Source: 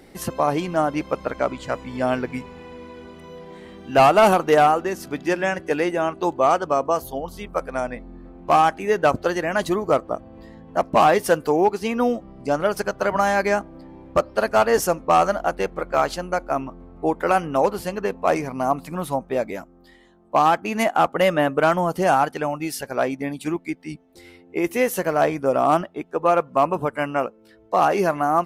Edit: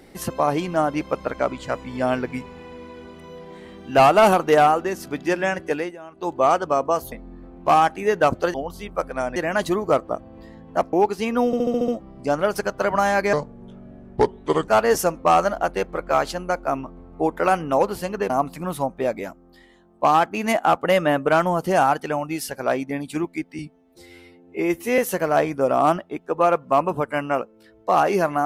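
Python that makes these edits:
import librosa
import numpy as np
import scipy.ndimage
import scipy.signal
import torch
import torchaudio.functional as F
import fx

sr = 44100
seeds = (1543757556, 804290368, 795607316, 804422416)

y = fx.edit(x, sr, fx.fade_down_up(start_s=5.67, length_s=0.73, db=-17.5, fade_s=0.3),
    fx.move(start_s=7.12, length_s=0.82, to_s=9.36),
    fx.cut(start_s=10.93, length_s=0.63),
    fx.stutter(start_s=12.09, slice_s=0.07, count=7),
    fx.speed_span(start_s=13.54, length_s=0.97, speed=0.72),
    fx.cut(start_s=18.13, length_s=0.48),
    fx.stretch_span(start_s=23.9, length_s=0.93, factor=1.5), tone=tone)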